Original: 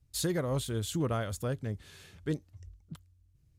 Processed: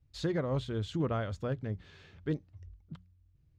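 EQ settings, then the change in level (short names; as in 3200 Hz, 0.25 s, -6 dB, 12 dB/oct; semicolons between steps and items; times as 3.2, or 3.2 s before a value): air absorption 190 m; notches 60/120/180 Hz; 0.0 dB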